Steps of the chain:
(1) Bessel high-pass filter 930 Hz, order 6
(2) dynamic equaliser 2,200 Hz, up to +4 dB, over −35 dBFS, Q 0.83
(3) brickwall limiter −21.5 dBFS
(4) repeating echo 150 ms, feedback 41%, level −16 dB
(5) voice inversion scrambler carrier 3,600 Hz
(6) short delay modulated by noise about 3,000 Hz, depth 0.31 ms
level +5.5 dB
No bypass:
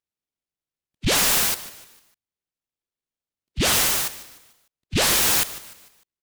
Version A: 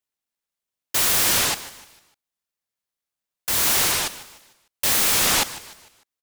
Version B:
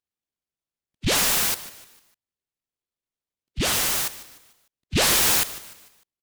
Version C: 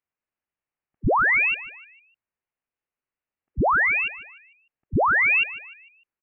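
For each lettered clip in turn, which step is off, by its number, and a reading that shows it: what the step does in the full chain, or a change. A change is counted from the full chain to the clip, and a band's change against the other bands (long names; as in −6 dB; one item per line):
5, 125 Hz band −6.0 dB
2, change in momentary loudness spread −8 LU
6, 2 kHz band +7.0 dB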